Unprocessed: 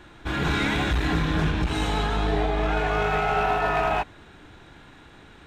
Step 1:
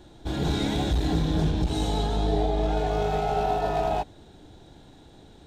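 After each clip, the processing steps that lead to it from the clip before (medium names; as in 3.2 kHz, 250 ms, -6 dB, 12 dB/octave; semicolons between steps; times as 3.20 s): high-order bell 1.7 kHz -13 dB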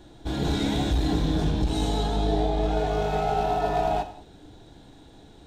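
gated-style reverb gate 240 ms falling, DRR 8 dB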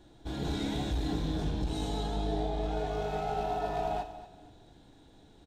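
feedback delay 236 ms, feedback 30%, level -15 dB; trim -8 dB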